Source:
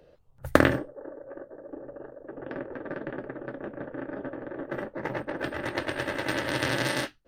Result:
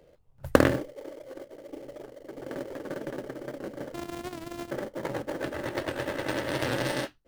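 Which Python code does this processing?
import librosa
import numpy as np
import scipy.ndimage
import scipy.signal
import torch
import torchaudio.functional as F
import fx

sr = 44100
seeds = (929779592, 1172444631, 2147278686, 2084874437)

p1 = fx.sample_sort(x, sr, block=128, at=(3.94, 4.71))
p2 = fx.dynamic_eq(p1, sr, hz=510.0, q=2.4, threshold_db=-41.0, ratio=4.0, max_db=3)
p3 = fx.sample_hold(p2, sr, seeds[0], rate_hz=2600.0, jitter_pct=20)
p4 = p2 + (p3 * 10.0 ** (-7.0 / 20.0))
p5 = fx.record_warp(p4, sr, rpm=78.0, depth_cents=100.0)
y = p5 * 10.0 ** (-4.0 / 20.0)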